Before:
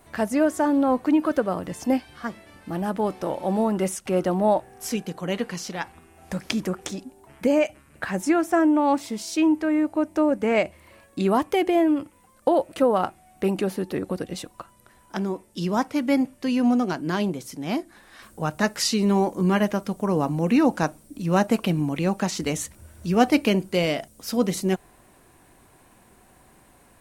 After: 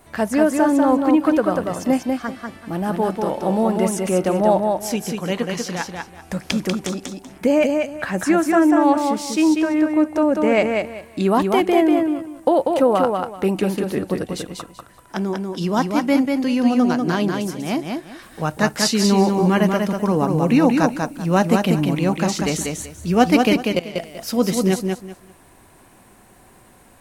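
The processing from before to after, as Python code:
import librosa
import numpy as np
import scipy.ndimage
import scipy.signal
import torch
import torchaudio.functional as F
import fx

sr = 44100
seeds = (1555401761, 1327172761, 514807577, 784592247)

y = fx.level_steps(x, sr, step_db=20, at=(23.53, 23.98))
y = fx.echo_feedback(y, sr, ms=192, feedback_pct=23, wet_db=-4)
y = y * 10.0 ** (3.5 / 20.0)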